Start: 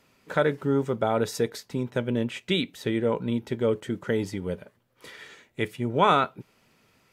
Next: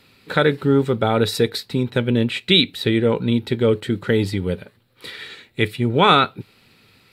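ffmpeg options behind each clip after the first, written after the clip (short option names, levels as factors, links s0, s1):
-af "equalizer=f=100:t=o:w=0.33:g=6,equalizer=f=630:t=o:w=0.33:g=-7,equalizer=f=1000:t=o:w=0.33:g=-5,equalizer=f=2500:t=o:w=0.33:g=3,equalizer=f=4000:t=o:w=0.33:g=12,equalizer=f=6300:t=o:w=0.33:g=-10,volume=2.51"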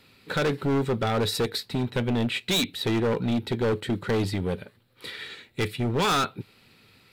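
-af "asoftclip=type=hard:threshold=0.126,volume=0.708"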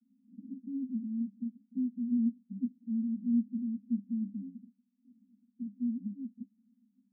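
-af "aeval=exprs='0.0944*(cos(1*acos(clip(val(0)/0.0944,-1,1)))-cos(1*PI/2))+0.015*(cos(6*acos(clip(val(0)/0.0944,-1,1)))-cos(6*PI/2))':c=same,asuperpass=centerf=230:order=12:qfactor=3.2,volume=0.891"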